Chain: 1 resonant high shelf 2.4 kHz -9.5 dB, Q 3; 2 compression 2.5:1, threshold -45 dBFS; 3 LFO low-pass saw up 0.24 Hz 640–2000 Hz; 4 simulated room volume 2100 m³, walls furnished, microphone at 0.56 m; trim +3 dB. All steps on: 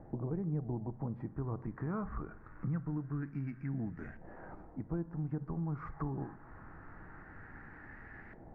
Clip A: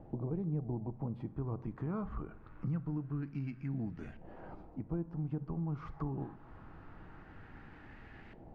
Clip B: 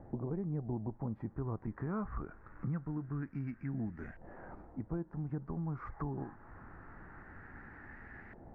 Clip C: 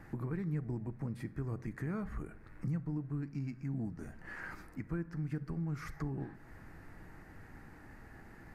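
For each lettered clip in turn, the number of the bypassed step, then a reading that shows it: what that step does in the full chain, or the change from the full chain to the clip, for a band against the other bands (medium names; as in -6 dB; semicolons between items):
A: 1, 2 kHz band -5.0 dB; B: 4, echo-to-direct -13.5 dB to none; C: 3, 2 kHz band +4.5 dB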